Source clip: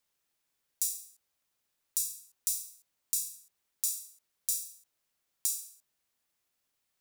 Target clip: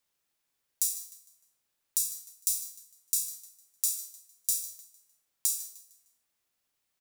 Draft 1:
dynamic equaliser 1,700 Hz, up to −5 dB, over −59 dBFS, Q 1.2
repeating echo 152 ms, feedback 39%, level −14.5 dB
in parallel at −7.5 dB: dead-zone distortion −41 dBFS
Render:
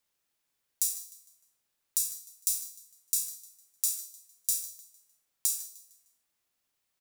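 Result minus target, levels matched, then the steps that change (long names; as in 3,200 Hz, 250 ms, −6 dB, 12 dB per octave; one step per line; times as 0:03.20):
dead-zone distortion: distortion +5 dB
change: dead-zone distortion −48 dBFS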